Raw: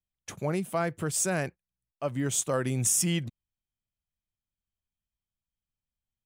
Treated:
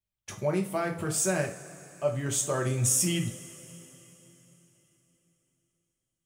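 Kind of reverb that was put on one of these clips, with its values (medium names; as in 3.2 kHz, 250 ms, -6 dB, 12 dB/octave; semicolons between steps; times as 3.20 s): two-slope reverb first 0.33 s, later 3.9 s, from -21 dB, DRR 1.5 dB; trim -2 dB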